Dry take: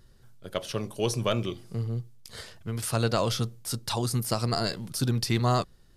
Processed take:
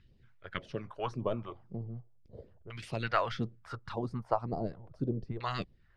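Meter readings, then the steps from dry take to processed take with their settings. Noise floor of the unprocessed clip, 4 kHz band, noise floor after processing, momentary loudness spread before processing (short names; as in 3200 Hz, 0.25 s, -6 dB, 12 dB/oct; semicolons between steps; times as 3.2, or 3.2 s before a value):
-56 dBFS, -14.5 dB, -63 dBFS, 11 LU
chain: harmonic-percussive split harmonic -12 dB; phaser stages 2, 1.8 Hz, lowest notch 200–1500 Hz; LFO low-pass saw down 0.37 Hz 440–2600 Hz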